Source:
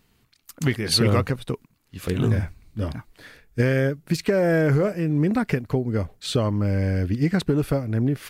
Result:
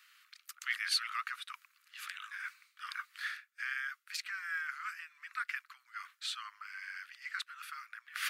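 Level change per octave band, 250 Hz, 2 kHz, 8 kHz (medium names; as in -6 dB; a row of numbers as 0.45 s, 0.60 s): under -40 dB, -4.5 dB, -10.5 dB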